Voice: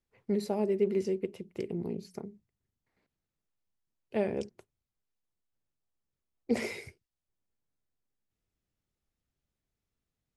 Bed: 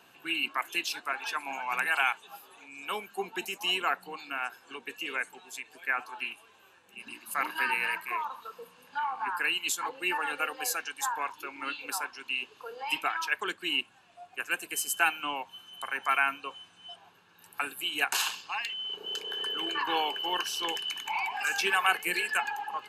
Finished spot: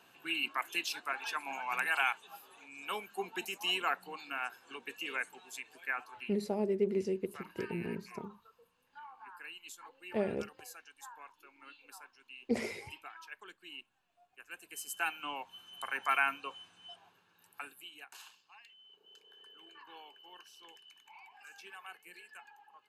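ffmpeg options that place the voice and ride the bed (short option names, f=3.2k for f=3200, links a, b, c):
-filter_complex "[0:a]adelay=6000,volume=-3dB[a];[1:a]volume=11.5dB,afade=t=out:st=5.68:d=0.84:silence=0.177828,afade=t=in:st=14.46:d=1.34:silence=0.16788,afade=t=out:st=16.63:d=1.4:silence=0.0944061[b];[a][b]amix=inputs=2:normalize=0"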